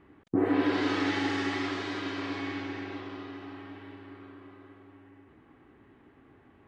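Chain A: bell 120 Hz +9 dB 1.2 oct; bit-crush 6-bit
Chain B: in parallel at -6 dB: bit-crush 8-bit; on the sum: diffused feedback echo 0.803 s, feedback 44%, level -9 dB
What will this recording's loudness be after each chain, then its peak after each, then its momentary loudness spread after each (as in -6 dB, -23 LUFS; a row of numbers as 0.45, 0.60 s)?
-29.0, -27.5 LUFS; -12.0, -11.0 dBFS; 16, 21 LU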